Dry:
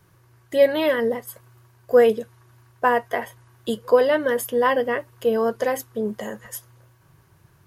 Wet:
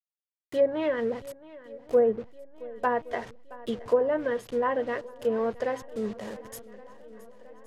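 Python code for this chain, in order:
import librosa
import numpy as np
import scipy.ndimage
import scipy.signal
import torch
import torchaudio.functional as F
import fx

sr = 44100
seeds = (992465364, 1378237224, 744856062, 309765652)

y = fx.delta_hold(x, sr, step_db=-33.5)
y = fx.low_shelf(y, sr, hz=470.0, db=2.5)
y = fx.env_lowpass_down(y, sr, base_hz=870.0, full_db=-11.5)
y = fx.echo_swing(y, sr, ms=1119, ratio=1.5, feedback_pct=52, wet_db=-19.5)
y = y * librosa.db_to_amplitude(-7.5)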